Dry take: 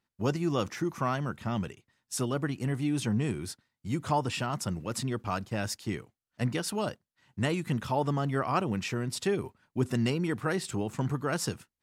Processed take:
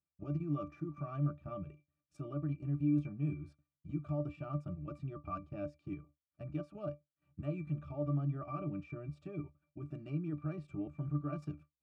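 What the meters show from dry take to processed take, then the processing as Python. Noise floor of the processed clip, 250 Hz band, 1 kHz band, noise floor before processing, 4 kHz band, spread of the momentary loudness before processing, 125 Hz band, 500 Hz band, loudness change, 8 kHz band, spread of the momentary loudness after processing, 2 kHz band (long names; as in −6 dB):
below −85 dBFS, −7.5 dB, −15.0 dB, below −85 dBFS, below −30 dB, 7 LU, −5.5 dB, −12.0 dB, −8.5 dB, below −35 dB, 12 LU, −21.5 dB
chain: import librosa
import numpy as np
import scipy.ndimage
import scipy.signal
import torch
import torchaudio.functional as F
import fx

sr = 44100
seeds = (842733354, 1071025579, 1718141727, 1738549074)

y = fx.level_steps(x, sr, step_db=11)
y = fx.octave_resonator(y, sr, note='D', decay_s=0.15)
y = F.gain(torch.from_numpy(y), 4.5).numpy()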